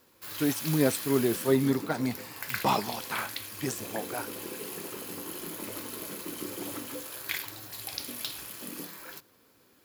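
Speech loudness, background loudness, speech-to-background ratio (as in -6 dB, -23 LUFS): -29.5 LUFS, -36.5 LUFS, 7.0 dB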